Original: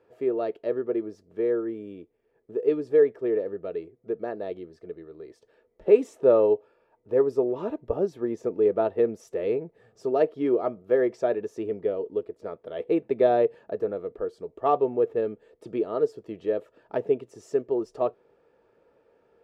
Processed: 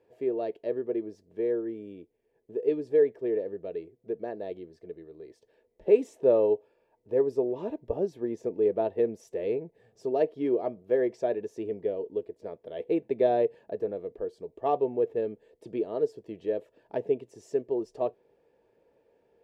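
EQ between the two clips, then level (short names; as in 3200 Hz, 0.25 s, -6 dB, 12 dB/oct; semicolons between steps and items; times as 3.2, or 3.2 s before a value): bell 1300 Hz -14.5 dB 0.32 oct; -3.0 dB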